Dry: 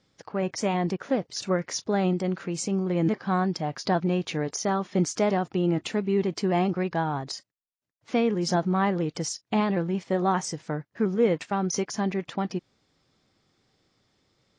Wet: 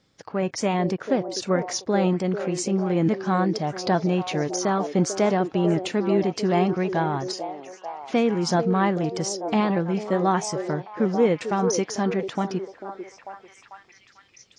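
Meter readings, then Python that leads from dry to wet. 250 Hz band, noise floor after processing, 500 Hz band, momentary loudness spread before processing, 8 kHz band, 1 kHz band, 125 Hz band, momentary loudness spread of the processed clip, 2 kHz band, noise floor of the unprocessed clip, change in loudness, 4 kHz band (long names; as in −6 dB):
+3.0 dB, −55 dBFS, +4.0 dB, 6 LU, +2.5 dB, +3.5 dB, +2.5 dB, 10 LU, +3.0 dB, −78 dBFS, +3.0 dB, +2.5 dB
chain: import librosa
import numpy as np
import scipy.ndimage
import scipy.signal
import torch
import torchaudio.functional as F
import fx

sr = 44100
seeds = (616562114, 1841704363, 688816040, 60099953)

y = fx.echo_stepped(x, sr, ms=444, hz=430.0, octaves=0.7, feedback_pct=70, wet_db=-5.0)
y = y * librosa.db_to_amplitude(2.5)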